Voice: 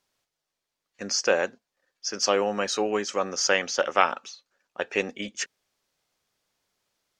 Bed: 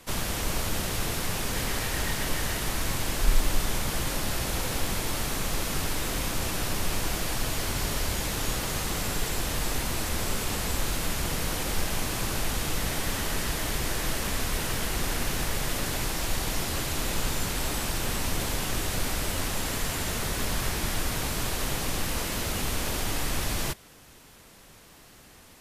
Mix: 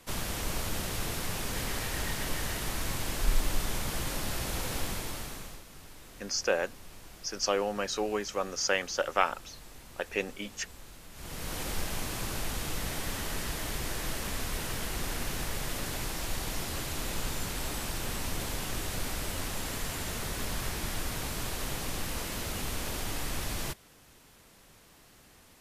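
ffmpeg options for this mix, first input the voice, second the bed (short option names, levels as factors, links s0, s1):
-filter_complex "[0:a]adelay=5200,volume=0.531[s0];[1:a]volume=3.55,afade=t=out:st=4.8:d=0.83:silence=0.149624,afade=t=in:st=11.12:d=0.49:silence=0.16788[s1];[s0][s1]amix=inputs=2:normalize=0"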